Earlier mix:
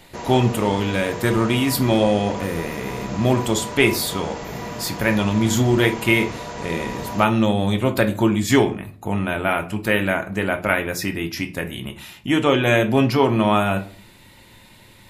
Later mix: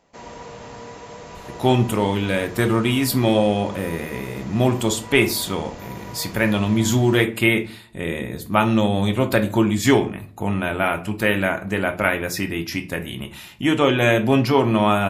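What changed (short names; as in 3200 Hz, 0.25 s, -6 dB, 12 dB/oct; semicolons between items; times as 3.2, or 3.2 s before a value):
speech: entry +1.35 s; background -6.5 dB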